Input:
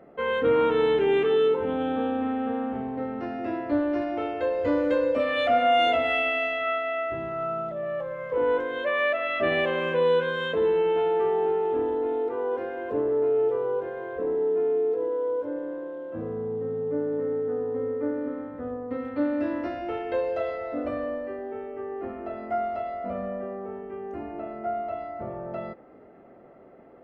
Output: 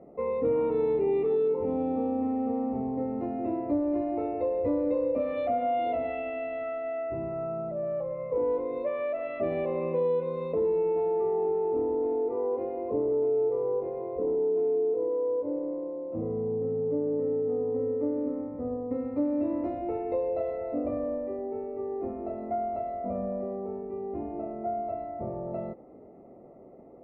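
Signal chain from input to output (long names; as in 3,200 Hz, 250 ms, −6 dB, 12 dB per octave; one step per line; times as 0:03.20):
downward compressor 2.5 to 1, threshold −26 dBFS, peak gain reduction 6 dB
moving average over 28 samples
level +2 dB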